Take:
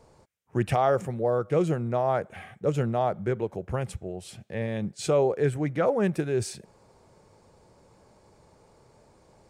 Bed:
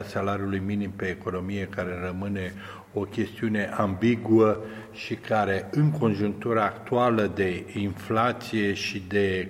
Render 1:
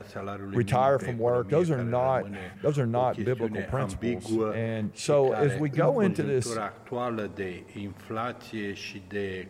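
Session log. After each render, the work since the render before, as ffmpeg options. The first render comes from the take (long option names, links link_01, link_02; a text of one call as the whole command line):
ffmpeg -i in.wav -i bed.wav -filter_complex "[1:a]volume=-8.5dB[link_01];[0:a][link_01]amix=inputs=2:normalize=0" out.wav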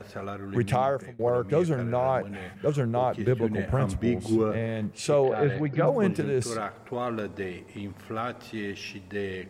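ffmpeg -i in.wav -filter_complex "[0:a]asettb=1/sr,asplit=3[link_01][link_02][link_03];[link_01]atrim=end=3.274[link_04];[link_02]atrim=start=3.27:end=4.58,asetpts=PTS-STARTPTS,afade=type=in:duration=0.004:curve=qsin,afade=type=out:start_time=1.306:duration=0.004:curve=qsin,lowshelf=frequency=340:gain=6[link_05];[link_03]atrim=start=4.576[link_06];[link_04][link_05]acrossfade=duration=0.004:curve1=hsin:curve2=qsin[link_07];[link_07][link_06]acrossfade=duration=0.004:curve1=qsin:curve2=hsin,asettb=1/sr,asplit=3[link_08][link_09][link_10];[link_08]atrim=end=5.234[link_11];[link_09]atrim=start=5.23:end=5.87,asetpts=PTS-STARTPTS,afade=type=in:duration=0.004:curve=qsin,afade=type=out:start_time=0.636:duration=0.004:curve=qsin,lowpass=frequency=4200:width=0.5412,lowpass=frequency=4200:width=1.3066[link_12];[link_10]atrim=start=5.866[link_13];[link_11][link_12]acrossfade=duration=0.004:curve1=hsin:curve2=qsin[link_14];[link_14][link_13]acrossfade=duration=0.004:curve1=qsin:curve2=hsin,asplit=2[link_15][link_16];[link_15]atrim=end=1.19,asetpts=PTS-STARTPTS,afade=type=out:start_time=0.74:duration=0.45:silence=0.0749894[link_17];[link_16]atrim=start=1.19,asetpts=PTS-STARTPTS,afade=type=in:duration=0.004:curve=hsin:silence=0.0749894[link_18];[link_17][link_18]concat=n=2:v=0:a=1" out.wav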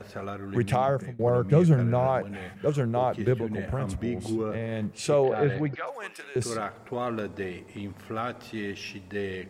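ffmpeg -i in.wav -filter_complex "[0:a]asettb=1/sr,asplit=3[link_01][link_02][link_03];[link_01]atrim=end=0.884[link_04];[link_02]atrim=start=0.88:end=2.07,asetpts=PTS-STARTPTS,afade=type=in:duration=0.004:curve=qsin,afade=type=out:start_time=1.186:duration=0.004:curve=qsin,equalizer=frequency=150:width=1.5:gain=10[link_05];[link_03]atrim=start=2.066[link_06];[link_04][link_05]acrossfade=duration=0.004:curve1=hsin:curve2=qsin[link_07];[link_07][link_06]acrossfade=duration=0.004:curve1=qsin:curve2=hsin,asettb=1/sr,asplit=3[link_08][link_09][link_10];[link_08]atrim=end=3.414[link_11];[link_09]atrim=start=3.41:end=4.72,asetpts=PTS-STARTPTS,afade=type=in:duration=0.004:curve=qsin,afade=type=out:start_time=1.306:duration=0.004:curve=qsin,acompressor=threshold=-28dB:ratio=2:attack=3.2:release=140:knee=1:detection=peak[link_12];[link_10]atrim=start=4.716[link_13];[link_11][link_12]acrossfade=duration=0.004:curve1=hsin:curve2=qsin[link_14];[link_14][link_13]acrossfade=duration=0.004:curve1=qsin:curve2=hsin,asettb=1/sr,asplit=3[link_15][link_16][link_17];[link_15]atrim=end=5.754[link_18];[link_16]atrim=start=5.75:end=6.36,asetpts=PTS-STARTPTS,afade=type=in:duration=0.004:curve=qsin,afade=type=out:start_time=0.606:duration=0.004:curve=qsin,highpass=1200[link_19];[link_17]atrim=start=6.356[link_20];[link_18][link_19]acrossfade=duration=0.004:curve1=hsin:curve2=qsin[link_21];[link_21][link_20]acrossfade=duration=0.004:curve1=qsin:curve2=hsin" out.wav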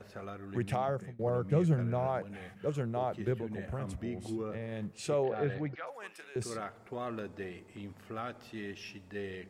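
ffmpeg -i in.wav -af "volume=-8dB" out.wav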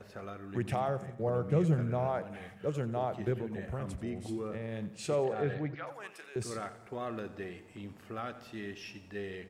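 ffmpeg -i in.wav -af "aecho=1:1:88|176|264|352|440:0.178|0.0925|0.0481|0.025|0.013" out.wav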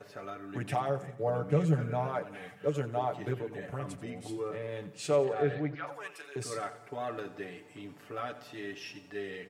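ffmpeg -i in.wav -af "highpass=frequency=200:poles=1,aecho=1:1:6.9:0.89" out.wav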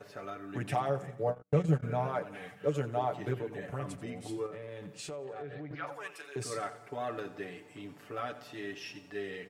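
ffmpeg -i in.wav -filter_complex "[0:a]asplit=3[link_01][link_02][link_03];[link_01]afade=type=out:start_time=1.3:duration=0.02[link_04];[link_02]agate=range=-47dB:threshold=-29dB:ratio=16:release=100:detection=peak,afade=type=in:start_time=1.3:duration=0.02,afade=type=out:start_time=1.82:duration=0.02[link_05];[link_03]afade=type=in:start_time=1.82:duration=0.02[link_06];[link_04][link_05][link_06]amix=inputs=3:normalize=0,asettb=1/sr,asplit=3[link_07][link_08][link_09];[link_07]atrim=end=4.464[link_10];[link_08]atrim=start=4.46:end=5.71,asetpts=PTS-STARTPTS,afade=type=in:duration=0.004:curve=qsin,afade=type=out:start_time=1.246:duration=0.004:curve=qsin,acompressor=threshold=-39dB:ratio=6:attack=3.2:release=140:knee=1:detection=peak[link_11];[link_09]atrim=start=5.706[link_12];[link_10][link_11]acrossfade=duration=0.004:curve1=hsin:curve2=qsin[link_13];[link_13][link_12]acrossfade=duration=0.004:curve1=qsin:curve2=hsin" out.wav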